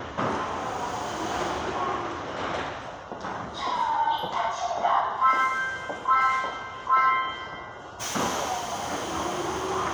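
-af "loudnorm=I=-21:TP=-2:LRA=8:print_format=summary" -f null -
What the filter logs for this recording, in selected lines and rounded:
Input Integrated:    -27.3 LUFS
Input True Peak:     -10.9 dBTP
Input LRA:             5.4 LU
Input Threshold:     -37.5 LUFS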